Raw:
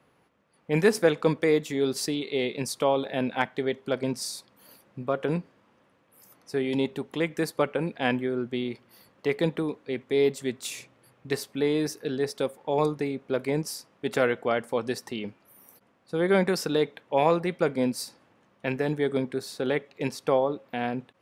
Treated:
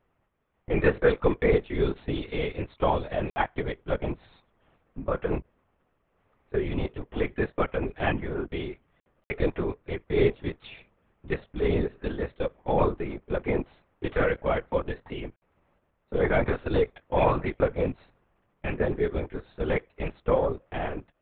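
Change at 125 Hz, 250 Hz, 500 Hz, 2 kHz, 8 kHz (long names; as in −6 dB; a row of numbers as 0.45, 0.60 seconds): +2.5 dB, −3.0 dB, −1.0 dB, −1.0 dB, below −40 dB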